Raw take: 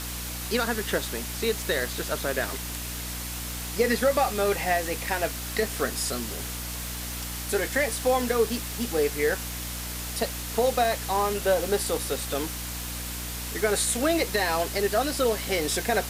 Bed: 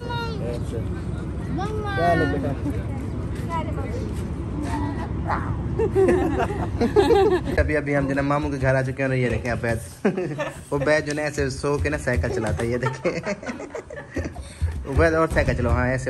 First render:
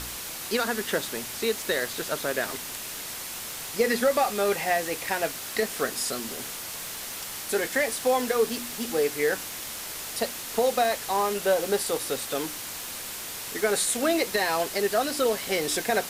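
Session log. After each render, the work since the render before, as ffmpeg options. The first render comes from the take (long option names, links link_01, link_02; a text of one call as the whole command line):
ffmpeg -i in.wav -af "bandreject=frequency=60:width_type=h:width=4,bandreject=frequency=120:width_type=h:width=4,bandreject=frequency=180:width_type=h:width=4,bandreject=frequency=240:width_type=h:width=4,bandreject=frequency=300:width_type=h:width=4" out.wav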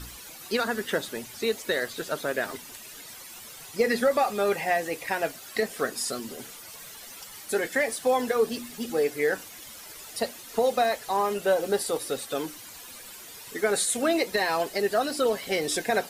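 ffmpeg -i in.wav -af "afftdn=noise_reduction=12:noise_floor=-37" out.wav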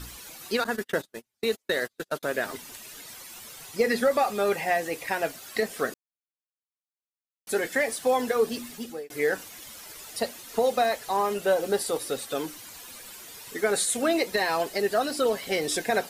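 ffmpeg -i in.wav -filter_complex "[0:a]asettb=1/sr,asplit=3[link_01][link_02][link_03];[link_01]atrim=end=0.644[link_04];[link_02]atrim=start=0.64:end=2.23,asetpts=PTS-STARTPTS,afade=type=in:duration=0.004:curve=qsin,afade=type=out:start_time=1.586:duration=0.004:curve=qsin,agate=range=-41dB:threshold=-33dB:ratio=16:release=100:detection=peak[link_05];[link_03]atrim=start=2.226[link_06];[link_04][link_05]acrossfade=duration=0.004:curve1=hsin:curve2=qsin[link_07];[link_07][link_06]acrossfade=duration=0.004:curve1=qsin:curve2=hsin,asplit=4[link_08][link_09][link_10][link_11];[link_08]atrim=end=5.94,asetpts=PTS-STARTPTS,afade=type=out:start_time=5.936:duration=0.004:curve=hsin[link_12];[link_09]atrim=start=5.94:end=7.47,asetpts=PTS-STARTPTS,volume=0[link_13];[link_10]atrim=start=7.47:end=9.1,asetpts=PTS-STARTPTS,afade=type=in:duration=0.004:curve=hsin,afade=type=out:start_time=1.23:duration=0.4[link_14];[link_11]atrim=start=9.1,asetpts=PTS-STARTPTS,afade=type=in:duration=0.004:curve=hsin[link_15];[link_12][link_13][link_14][link_15]concat=n=4:v=0:a=1" out.wav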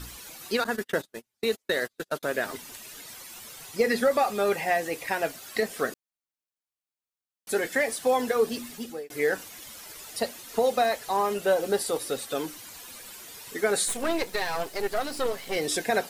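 ffmpeg -i in.wav -filter_complex "[0:a]asplit=3[link_01][link_02][link_03];[link_01]afade=type=out:start_time=13.87:duration=0.02[link_04];[link_02]aeval=exprs='if(lt(val(0),0),0.251*val(0),val(0))':channel_layout=same,afade=type=in:start_time=13.87:duration=0.02,afade=type=out:start_time=15.55:duration=0.02[link_05];[link_03]afade=type=in:start_time=15.55:duration=0.02[link_06];[link_04][link_05][link_06]amix=inputs=3:normalize=0" out.wav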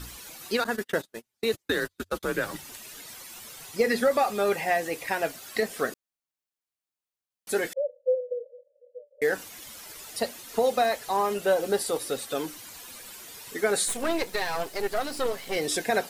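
ffmpeg -i in.wav -filter_complex "[0:a]asettb=1/sr,asplit=3[link_01][link_02][link_03];[link_01]atrim=end=1.534[link_04];[link_02]atrim=start=1.53:end=2.64,asetpts=PTS-STARTPTS,afade=type=in:duration=0.004:curve=qsin,afade=type=out:start_time=1.106:duration=0.004:curve=qsin,afreqshift=-94[link_05];[link_03]atrim=start=2.636[link_06];[link_04][link_05]acrossfade=duration=0.004:curve1=hsin:curve2=qsin[link_07];[link_07][link_06]acrossfade=duration=0.004:curve1=qsin:curve2=hsin,asettb=1/sr,asplit=3[link_08][link_09][link_10];[link_08]atrim=end=7.734[link_11];[link_09]atrim=start=7.73:end=9.22,asetpts=PTS-STARTPTS,afade=type=in:duration=0.004:curve=qsin,afade=type=out:start_time=1.486:duration=0.004:curve=qsin,asuperpass=centerf=540:order=12:qfactor=4.6[link_12];[link_10]atrim=start=9.216[link_13];[link_11][link_12]acrossfade=duration=0.004:curve1=hsin:curve2=qsin[link_14];[link_14][link_13]acrossfade=duration=0.004:curve1=qsin:curve2=hsin" out.wav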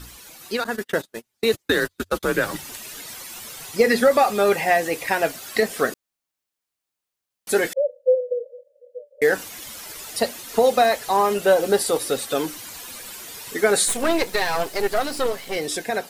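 ffmpeg -i in.wav -af "dynaudnorm=framelen=170:gausssize=11:maxgain=7dB" out.wav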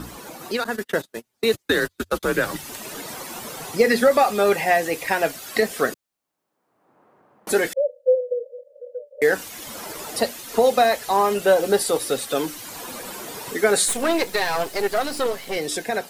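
ffmpeg -i in.wav -filter_complex "[0:a]acrossover=split=130|1200|4800[link_01][link_02][link_03][link_04];[link_01]alimiter=level_in=7.5dB:limit=-24dB:level=0:latency=1,volume=-7.5dB[link_05];[link_02]acompressor=mode=upward:threshold=-26dB:ratio=2.5[link_06];[link_05][link_06][link_03][link_04]amix=inputs=4:normalize=0" out.wav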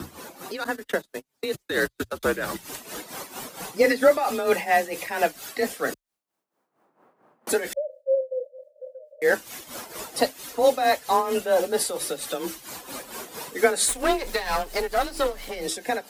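ffmpeg -i in.wav -af "afreqshift=25,tremolo=f=4.4:d=0.72" out.wav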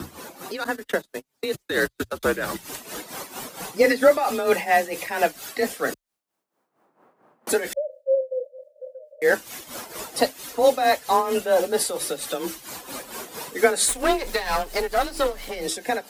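ffmpeg -i in.wav -af "volume=1.5dB" out.wav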